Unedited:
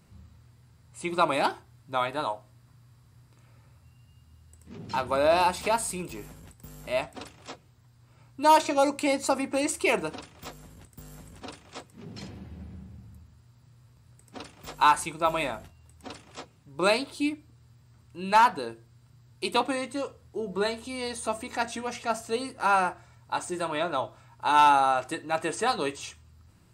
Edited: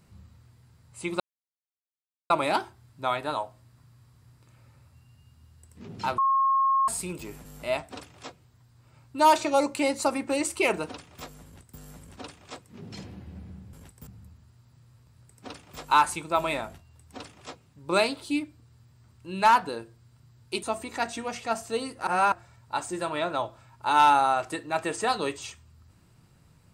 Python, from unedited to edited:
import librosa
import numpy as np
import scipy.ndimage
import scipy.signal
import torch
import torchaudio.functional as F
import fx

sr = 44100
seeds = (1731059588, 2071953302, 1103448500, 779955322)

y = fx.edit(x, sr, fx.insert_silence(at_s=1.2, length_s=1.1),
    fx.bleep(start_s=5.08, length_s=0.7, hz=1080.0, db=-19.5),
    fx.move(start_s=6.35, length_s=0.34, to_s=12.97),
    fx.cut(start_s=19.53, length_s=1.69),
    fx.reverse_span(start_s=22.66, length_s=0.25), tone=tone)